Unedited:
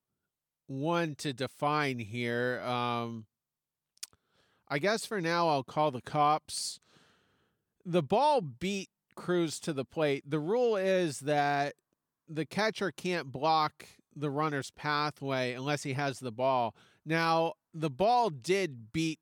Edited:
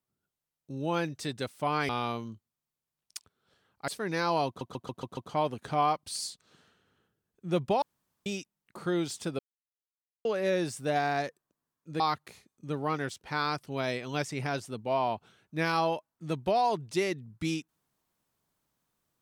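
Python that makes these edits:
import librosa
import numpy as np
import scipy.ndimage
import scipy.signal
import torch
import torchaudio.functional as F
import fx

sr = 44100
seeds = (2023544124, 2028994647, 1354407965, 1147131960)

y = fx.edit(x, sr, fx.cut(start_s=1.89, length_s=0.87),
    fx.cut(start_s=4.75, length_s=0.25),
    fx.stutter(start_s=5.59, slice_s=0.14, count=6),
    fx.room_tone_fill(start_s=8.24, length_s=0.44),
    fx.silence(start_s=9.81, length_s=0.86),
    fx.cut(start_s=12.42, length_s=1.11), tone=tone)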